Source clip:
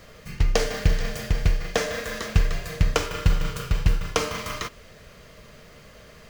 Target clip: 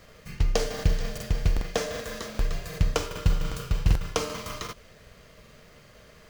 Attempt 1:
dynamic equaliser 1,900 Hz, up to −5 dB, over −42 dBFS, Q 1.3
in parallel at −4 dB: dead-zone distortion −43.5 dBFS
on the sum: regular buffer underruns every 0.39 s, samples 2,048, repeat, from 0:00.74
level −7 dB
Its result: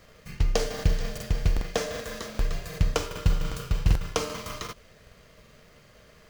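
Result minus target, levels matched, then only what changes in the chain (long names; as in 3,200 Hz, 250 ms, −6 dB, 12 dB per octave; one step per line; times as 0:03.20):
dead-zone distortion: distortion +8 dB
change: dead-zone distortion −52.5 dBFS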